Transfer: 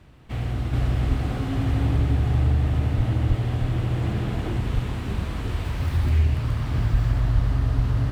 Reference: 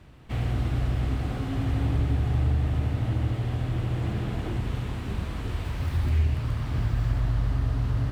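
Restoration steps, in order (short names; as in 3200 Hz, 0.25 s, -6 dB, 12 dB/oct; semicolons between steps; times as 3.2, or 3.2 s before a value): de-plosive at 1.08/2.96/3.28/3.6/4.74/6.91/7.34/7.75; gain correction -3.5 dB, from 0.73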